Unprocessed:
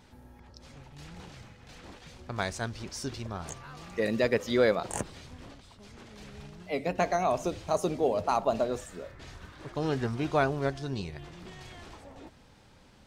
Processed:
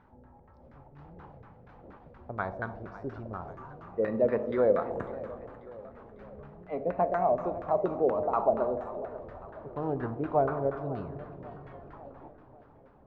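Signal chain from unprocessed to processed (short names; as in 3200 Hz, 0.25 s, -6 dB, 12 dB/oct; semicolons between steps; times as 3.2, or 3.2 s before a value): Schroeder reverb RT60 2.1 s, combs from 28 ms, DRR 7 dB; LFO low-pass saw down 4.2 Hz 470–1500 Hz; warbling echo 0.544 s, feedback 54%, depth 162 cents, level -17 dB; gain -4.5 dB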